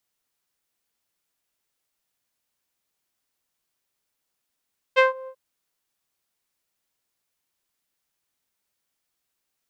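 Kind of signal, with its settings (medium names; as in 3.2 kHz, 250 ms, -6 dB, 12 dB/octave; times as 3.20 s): synth note saw C5 12 dB/octave, low-pass 780 Hz, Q 1.9, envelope 2 oct, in 0.19 s, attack 27 ms, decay 0.14 s, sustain -24 dB, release 0.07 s, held 0.32 s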